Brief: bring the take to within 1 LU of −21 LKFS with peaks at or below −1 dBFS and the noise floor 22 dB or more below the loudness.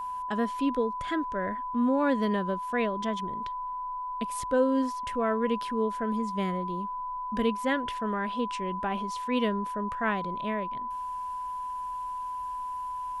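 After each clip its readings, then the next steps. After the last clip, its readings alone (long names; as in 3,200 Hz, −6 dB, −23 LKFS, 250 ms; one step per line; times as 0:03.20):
interfering tone 1,000 Hz; level of the tone −32 dBFS; integrated loudness −30.5 LKFS; sample peak −13.5 dBFS; target loudness −21.0 LKFS
→ notch filter 1,000 Hz, Q 30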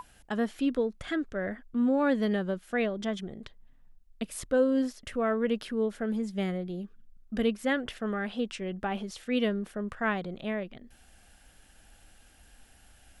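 interfering tone none found; integrated loudness −31.0 LKFS; sample peak −14.5 dBFS; target loudness −21.0 LKFS
→ level +10 dB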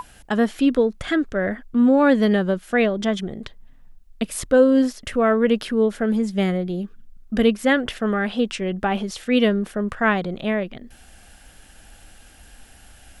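integrated loudness −21.0 LKFS; sample peak −4.5 dBFS; background noise floor −49 dBFS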